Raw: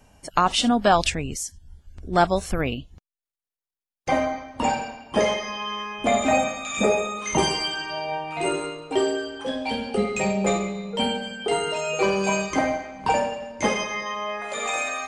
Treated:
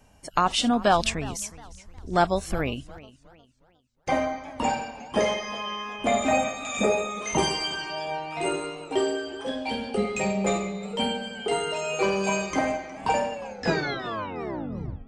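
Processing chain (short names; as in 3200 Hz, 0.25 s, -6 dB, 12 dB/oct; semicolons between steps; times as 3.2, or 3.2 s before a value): tape stop at the end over 1.75 s; warbling echo 0.359 s, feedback 36%, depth 139 cents, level -19 dB; gain -2.5 dB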